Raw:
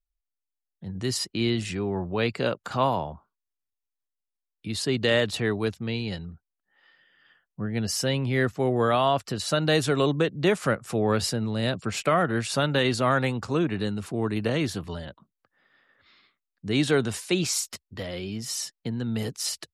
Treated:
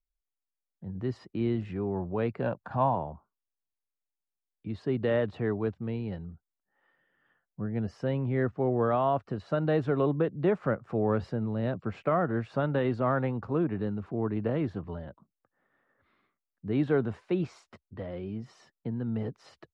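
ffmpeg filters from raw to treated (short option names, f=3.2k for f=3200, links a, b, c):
-filter_complex "[0:a]asettb=1/sr,asplit=3[a][b][c];[a]atrim=end=2.424[d];[b]atrim=start=2.42:end=2.95,asetpts=PTS-STARTPTS,afade=t=in:d=0.004:c=qsin,afade=t=out:st=0.526:d=0.004:c=qsin,aecho=1:1:1.2:0.54,atrim=end_sample=23373[e];[c]atrim=start=2.946[f];[d][e]acrossfade=d=0.004:c1=hsin:c2=qsin[g];[g][f]acrossfade=d=0.004:c1=qsin:c2=hsin,lowpass=1.2k,volume=-3dB"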